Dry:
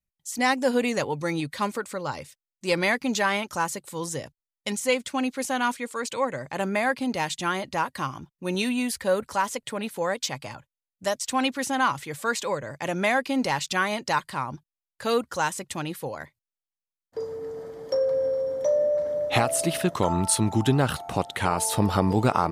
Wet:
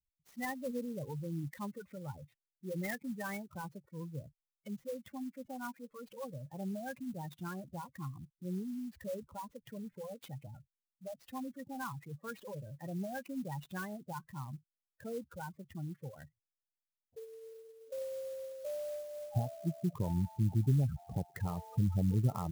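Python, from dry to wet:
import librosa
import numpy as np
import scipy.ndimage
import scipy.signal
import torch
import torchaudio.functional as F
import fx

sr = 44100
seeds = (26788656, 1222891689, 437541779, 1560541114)

y = fx.spacing_loss(x, sr, db_at_10k=fx.steps((0.0, 33.0), (2.97, 40.0), (4.8, 45.0)))
y = fx.spec_gate(y, sr, threshold_db=-10, keep='strong')
y = fx.band_shelf(y, sr, hz=570.0, db=-11.0, octaves=2.9)
y = fx.clock_jitter(y, sr, seeds[0], jitter_ms=0.038)
y = y * librosa.db_to_amplitude(-3.0)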